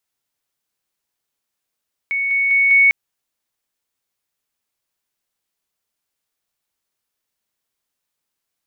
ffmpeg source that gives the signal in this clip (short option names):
-f lavfi -i "aevalsrc='pow(10,(-17.5+3*floor(t/0.2))/20)*sin(2*PI*2220*t)':d=0.8:s=44100"